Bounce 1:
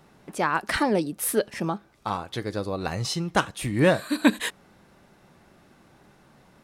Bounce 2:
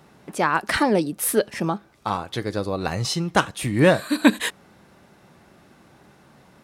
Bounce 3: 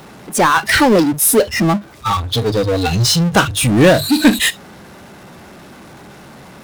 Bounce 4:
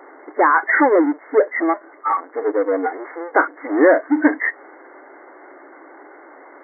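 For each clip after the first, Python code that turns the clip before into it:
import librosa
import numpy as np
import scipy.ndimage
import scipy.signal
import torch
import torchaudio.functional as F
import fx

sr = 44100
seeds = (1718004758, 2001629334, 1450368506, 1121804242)

y1 = scipy.signal.sosfilt(scipy.signal.butter(2, 53.0, 'highpass', fs=sr, output='sos'), x)
y1 = F.gain(torch.from_numpy(y1), 3.5).numpy()
y2 = fx.hum_notches(y1, sr, base_hz=50, count=3)
y2 = fx.noise_reduce_blind(y2, sr, reduce_db=23)
y2 = fx.power_curve(y2, sr, exponent=0.5)
y2 = F.gain(torch.from_numpy(y2), 2.0).numpy()
y3 = fx.brickwall_bandpass(y2, sr, low_hz=270.0, high_hz=2200.0)
y3 = F.gain(torch.from_numpy(y3), -1.5).numpy()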